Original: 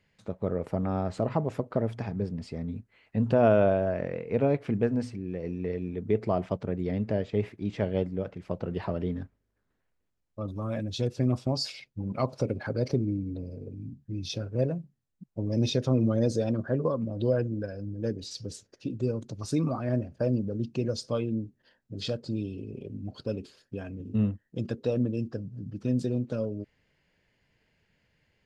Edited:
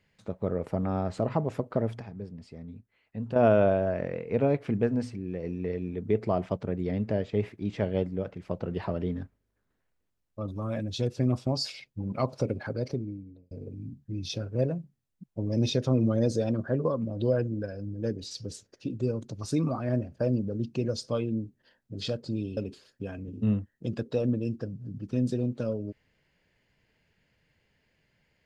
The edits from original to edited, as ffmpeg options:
ffmpeg -i in.wav -filter_complex "[0:a]asplit=5[link_01][link_02][link_03][link_04][link_05];[link_01]atrim=end=2.002[link_06];[link_02]atrim=start=1.998:end=3.362,asetpts=PTS-STARTPTS,volume=-8.5dB[link_07];[link_03]atrim=start=3.358:end=13.51,asetpts=PTS-STARTPTS,afade=type=out:start_time=9.142:duration=1.01[link_08];[link_04]atrim=start=13.51:end=22.572,asetpts=PTS-STARTPTS,afade=type=in:duration=0.004:curve=hsin[link_09];[link_05]atrim=start=23.288[link_10];[link_06][link_07]acrossfade=duration=0.004:curve1=hsin:curve2=hsin[link_11];[link_08][link_09]concat=n=2:v=0:a=1[link_12];[link_11][link_12]acrossfade=duration=0.004:curve1=hsin:curve2=hsin[link_13];[link_13][link_10]acrossfade=duration=0.004:curve1=hsin:curve2=hsin" out.wav

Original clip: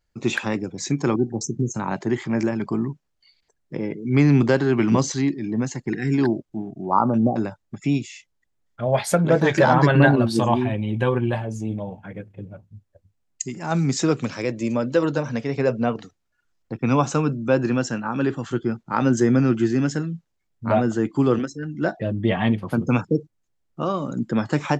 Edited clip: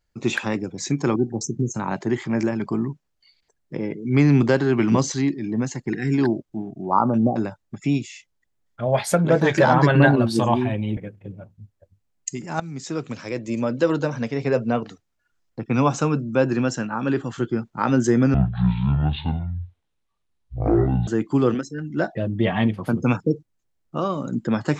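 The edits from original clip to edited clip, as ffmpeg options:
ffmpeg -i in.wav -filter_complex "[0:a]asplit=5[link_01][link_02][link_03][link_04][link_05];[link_01]atrim=end=10.972[link_06];[link_02]atrim=start=12.098:end=13.73,asetpts=PTS-STARTPTS,afade=type=out:start_time=1.628:duration=0.004:curve=hsin:silence=0.149624[link_07];[link_03]atrim=start=13.73:end=19.474,asetpts=PTS-STARTPTS,afade=type=in:duration=1.15:silence=0.149624[link_08];[link_04]atrim=start=19.47:end=20.92,asetpts=PTS-STARTPTS,asetrate=23373,aresample=44100[link_09];[link_05]atrim=start=20.916[link_10];[link_07][link_08]concat=n=2:v=0:a=1[link_11];[link_06][link_11]acrossfade=duration=0.004:curve1=hsin:curve2=hsin[link_12];[link_12][link_09]acrossfade=duration=0.004:curve1=hsin:curve2=hsin[link_13];[link_13][link_10]acrossfade=duration=0.004:curve1=hsin:curve2=hsin" out.wav

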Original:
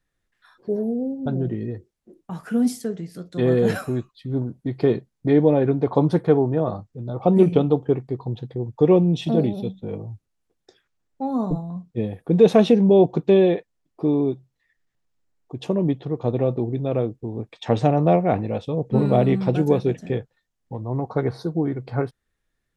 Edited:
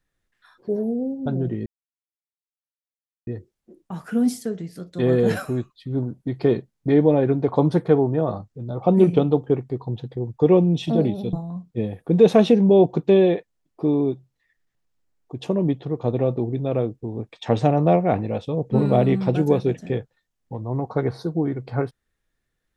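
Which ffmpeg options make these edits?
ffmpeg -i in.wav -filter_complex "[0:a]asplit=3[link_01][link_02][link_03];[link_01]atrim=end=1.66,asetpts=PTS-STARTPTS,afade=type=out:start_time=1.656:duration=0.004:curve=hsin,apad=pad_dur=1.61[link_04];[link_02]atrim=start=1.66:end=9.722,asetpts=PTS-STARTPTS,afade=type=in:duration=0.004:curve=hsin[link_05];[link_03]atrim=start=11.528[link_06];[link_04][link_05]concat=n=2:v=0:a=1[link_07];[link_07][link_06]acrossfade=duration=0.004:curve1=hsin:curve2=hsin" out.wav

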